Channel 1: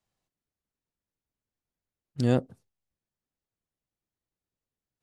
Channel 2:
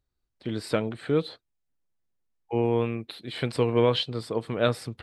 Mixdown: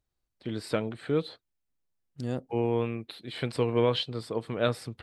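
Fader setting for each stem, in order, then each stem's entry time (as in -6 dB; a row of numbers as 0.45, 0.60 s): -9.0, -3.0 dB; 0.00, 0.00 s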